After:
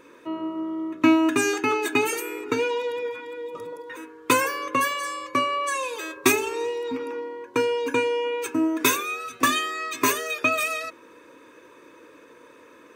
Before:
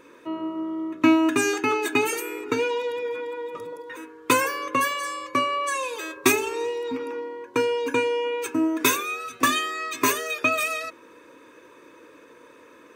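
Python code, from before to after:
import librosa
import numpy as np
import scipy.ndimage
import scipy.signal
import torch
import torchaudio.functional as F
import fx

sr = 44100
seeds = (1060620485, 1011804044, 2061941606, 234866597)

y = fx.peak_eq(x, sr, hz=fx.line((3.09, 300.0), (3.57, 2000.0)), db=-12.5, octaves=0.68, at=(3.09, 3.57), fade=0.02)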